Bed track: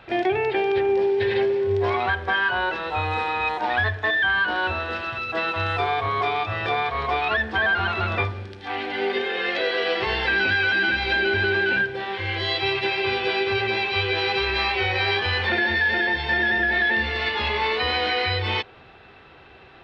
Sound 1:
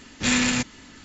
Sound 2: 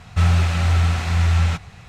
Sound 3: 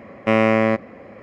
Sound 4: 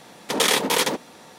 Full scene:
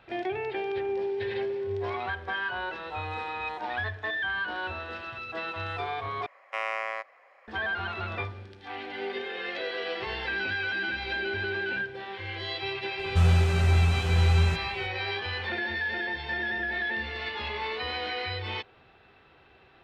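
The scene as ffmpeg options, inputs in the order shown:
-filter_complex "[0:a]volume=0.335[s0];[3:a]highpass=f=750:w=0.5412,highpass=f=750:w=1.3066[s1];[2:a]equalizer=f=2600:w=0.61:g=-9[s2];[s0]asplit=2[s3][s4];[s3]atrim=end=6.264[s5];[s1]atrim=end=1.22,asetpts=PTS-STARTPTS,volume=0.355[s6];[s4]atrim=start=7.476[s7];[s2]atrim=end=1.88,asetpts=PTS-STARTPTS,volume=0.596,afade=t=in:d=0.004:c=hsin,afade=t=out:st=1.876:d=0.004:c=hsin,adelay=12990[s8];[s5][s6]acrossfade=d=0.004:c1=hsin:c2=hsin[s9];[s9][s7]acrossfade=d=0.004:c1=hsin:c2=hsin[s10];[s10][s8]amix=inputs=2:normalize=0"

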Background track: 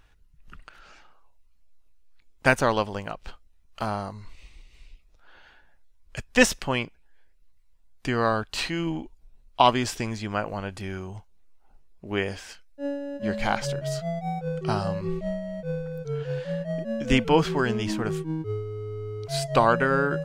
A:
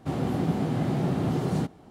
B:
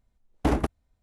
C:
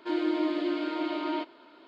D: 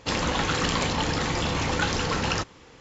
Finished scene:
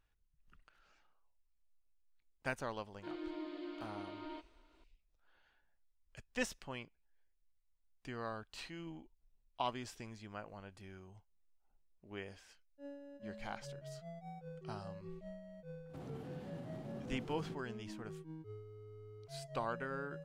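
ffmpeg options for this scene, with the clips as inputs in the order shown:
-filter_complex "[0:a]volume=0.106[s0];[1:a]alimiter=level_in=1.26:limit=0.0631:level=0:latency=1:release=138,volume=0.794[s1];[3:a]atrim=end=1.87,asetpts=PTS-STARTPTS,volume=0.15,afade=t=in:d=0.004:c=hsin,afade=t=out:st=1.866:d=0.004:c=hsin,adelay=2970[s2];[s1]atrim=end=1.9,asetpts=PTS-STARTPTS,volume=0.178,afade=t=in:d=0.02,afade=t=out:st=1.88:d=0.02,adelay=700308S[s3];[s0][s2][s3]amix=inputs=3:normalize=0"

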